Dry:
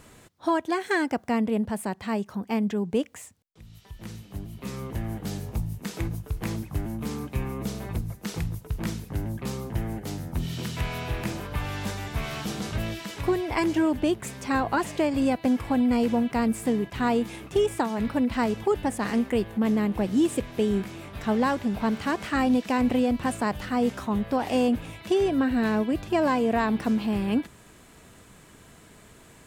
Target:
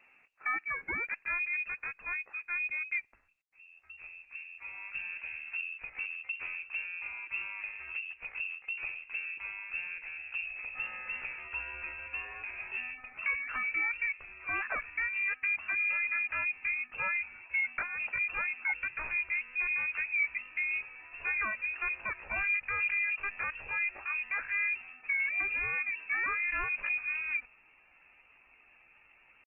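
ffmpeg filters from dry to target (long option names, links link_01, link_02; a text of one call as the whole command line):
ffmpeg -i in.wav -af "asetrate=68011,aresample=44100,atempo=0.64842,lowpass=frequency=2400:width_type=q:width=0.5098,lowpass=frequency=2400:width_type=q:width=0.6013,lowpass=frequency=2400:width_type=q:width=0.9,lowpass=frequency=2400:width_type=q:width=2.563,afreqshift=-2800,asubboost=boost=5.5:cutoff=76,volume=-9dB" -ar 48000 -c:a libopus -b:a 16k out.opus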